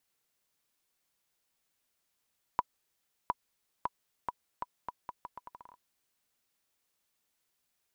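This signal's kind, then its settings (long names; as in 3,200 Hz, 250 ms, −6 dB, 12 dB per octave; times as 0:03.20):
bouncing ball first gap 0.71 s, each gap 0.78, 982 Hz, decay 34 ms −14.5 dBFS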